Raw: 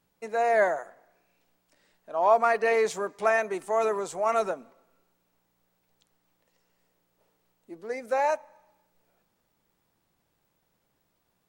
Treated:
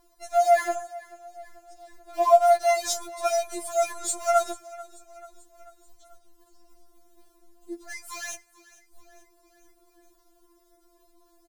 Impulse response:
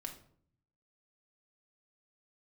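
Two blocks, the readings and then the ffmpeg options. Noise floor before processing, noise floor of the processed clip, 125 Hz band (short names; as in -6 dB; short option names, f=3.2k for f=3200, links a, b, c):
-75 dBFS, -63 dBFS, n/a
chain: -filter_complex "[0:a]equalizer=f=270:t=o:w=0.37:g=-6,acrossover=split=950[a][b];[a]acompressor=mode=upward:threshold=-38dB:ratio=2.5[c];[c][b]amix=inputs=2:normalize=0,aexciter=amount=4.9:drive=4.9:freq=3.7k,asplit=2[d][e];[e]acrusher=bits=5:dc=4:mix=0:aa=0.000001,volume=-9.5dB[f];[d][f]amix=inputs=2:normalize=0,aecho=1:1:438|876|1314|1752:0.1|0.056|0.0314|0.0176,afftfilt=real='re*4*eq(mod(b,16),0)':imag='im*4*eq(mod(b,16),0)':win_size=2048:overlap=0.75,volume=-2.5dB"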